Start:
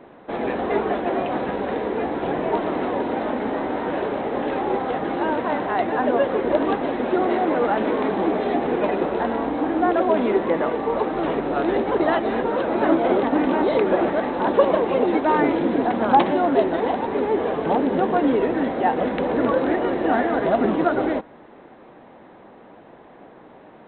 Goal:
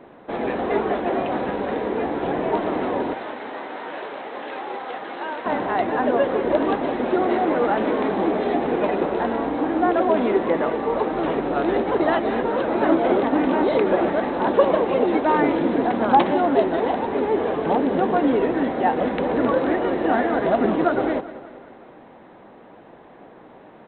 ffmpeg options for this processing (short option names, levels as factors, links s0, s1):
-filter_complex "[0:a]asettb=1/sr,asplit=3[s0][s1][s2];[s0]atrim=end=3.134[s3];[s1]atrim=start=3.13:end=5.46,asetpts=PTS-STARTPTS,afade=t=in:d=0.004:c=qsin,afade=t=out:st=2.326:d=0.004:c=qsin,highpass=f=1300:p=1[s4];[s2]atrim=start=5.456[s5];[s3][s4]acrossfade=d=0.004:c1=hsin:c2=qsin[s6];[s6][s5]acrossfade=d=0.004:c1=qsin:c2=hsin,aecho=1:1:191|382|573|764|955:0.15|0.0868|0.0503|0.0292|0.0169"